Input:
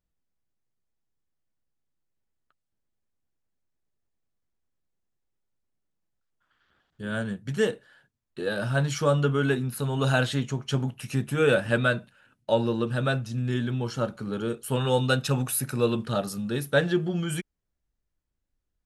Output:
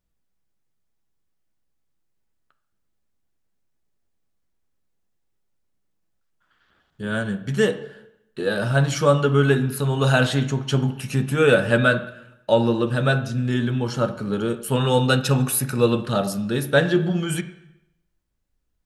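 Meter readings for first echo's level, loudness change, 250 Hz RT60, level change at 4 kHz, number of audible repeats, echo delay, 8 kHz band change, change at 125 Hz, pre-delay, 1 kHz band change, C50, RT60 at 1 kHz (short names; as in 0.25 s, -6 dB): none, +5.5 dB, 0.85 s, +5.5 dB, none, none, +5.0 dB, +5.5 dB, 4 ms, +5.5 dB, 12.5 dB, 0.85 s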